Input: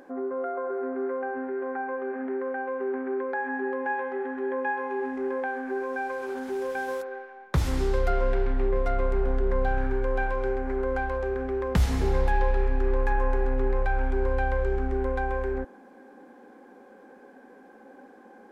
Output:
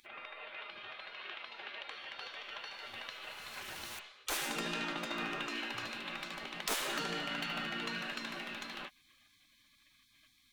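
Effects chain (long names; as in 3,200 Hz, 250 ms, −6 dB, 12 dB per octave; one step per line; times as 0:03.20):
change of speed 1.76×
gate on every frequency bin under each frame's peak −25 dB weak
level +3.5 dB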